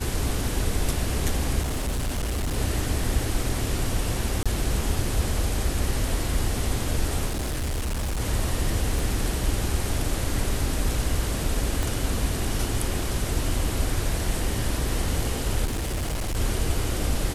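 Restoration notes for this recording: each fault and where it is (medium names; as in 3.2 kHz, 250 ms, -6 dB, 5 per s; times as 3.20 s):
1.61–2.58 s: clipped -23 dBFS
4.43–4.46 s: dropout 26 ms
7.26–8.21 s: clipped -24 dBFS
8.99 s: pop
11.83 s: pop
15.65–16.37 s: clipped -24 dBFS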